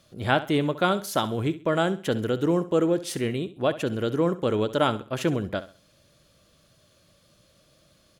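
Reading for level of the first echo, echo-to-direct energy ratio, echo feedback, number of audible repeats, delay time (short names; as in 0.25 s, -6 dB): -15.0 dB, -14.5 dB, 31%, 2, 66 ms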